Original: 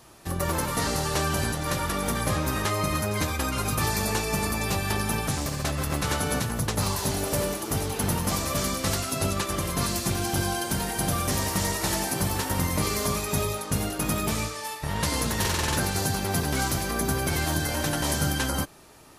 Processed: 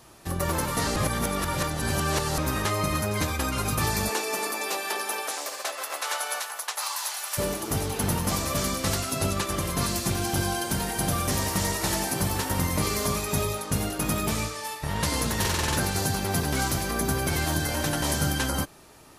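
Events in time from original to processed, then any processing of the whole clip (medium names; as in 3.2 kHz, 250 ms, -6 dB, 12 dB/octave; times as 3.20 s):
0.96–2.38 s: reverse
4.08–7.37 s: high-pass 270 Hz -> 1 kHz 24 dB/octave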